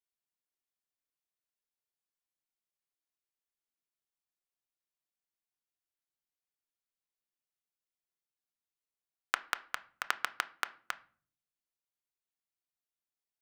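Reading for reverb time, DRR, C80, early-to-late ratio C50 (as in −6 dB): 0.45 s, 10.0 dB, 24.0 dB, 19.5 dB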